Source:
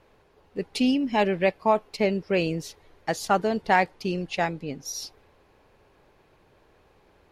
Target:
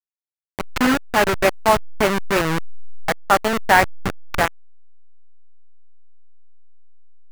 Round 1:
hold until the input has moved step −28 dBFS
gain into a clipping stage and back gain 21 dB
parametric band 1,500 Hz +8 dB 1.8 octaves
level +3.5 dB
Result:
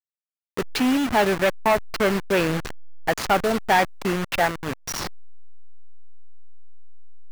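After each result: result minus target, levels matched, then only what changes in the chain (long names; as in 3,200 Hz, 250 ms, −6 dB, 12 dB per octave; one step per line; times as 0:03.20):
gain into a clipping stage and back: distortion +16 dB; hold until the input has moved: distortion −8 dB
change: gain into a clipping stage and back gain 12.5 dB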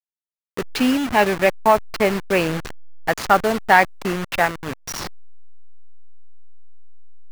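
hold until the input has moved: distortion −8 dB
change: hold until the input has moved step −18.5 dBFS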